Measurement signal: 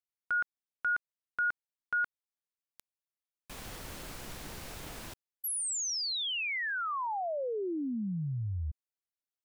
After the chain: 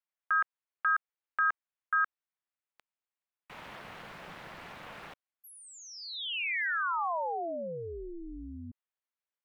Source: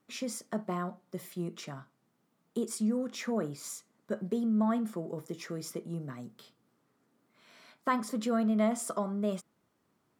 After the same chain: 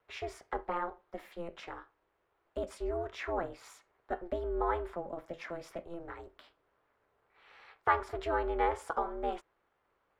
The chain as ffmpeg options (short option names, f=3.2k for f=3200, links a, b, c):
-filter_complex "[0:a]aeval=exprs='val(0)*sin(2*PI*170*n/s)':c=same,acrossover=split=540 3100:gain=0.224 1 0.0794[a][b][c];[a][b][c]amix=inputs=3:normalize=0,acontrast=64"